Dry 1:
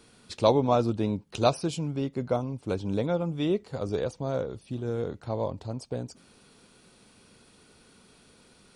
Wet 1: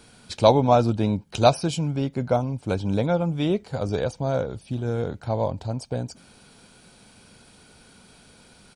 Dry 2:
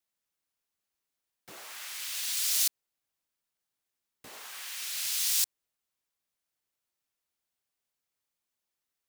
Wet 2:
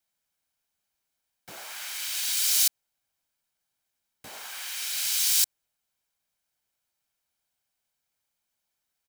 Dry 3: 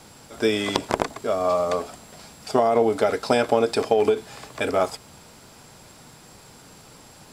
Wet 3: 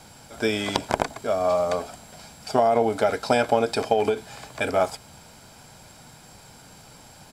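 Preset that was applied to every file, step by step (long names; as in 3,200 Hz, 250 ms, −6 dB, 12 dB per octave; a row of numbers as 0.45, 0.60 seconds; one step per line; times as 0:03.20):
comb filter 1.3 ms, depth 33%
loudness normalisation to −24 LKFS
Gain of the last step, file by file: +5.0, +4.0, −1.0 decibels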